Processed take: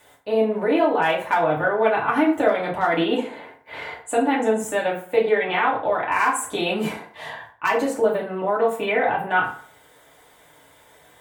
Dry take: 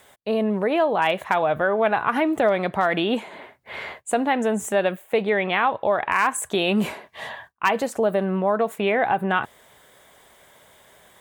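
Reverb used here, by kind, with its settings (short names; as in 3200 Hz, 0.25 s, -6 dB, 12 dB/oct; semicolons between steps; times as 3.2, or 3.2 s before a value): FDN reverb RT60 0.49 s, low-frequency decay 0.9×, high-frequency decay 0.65×, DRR -5 dB; gain -5.5 dB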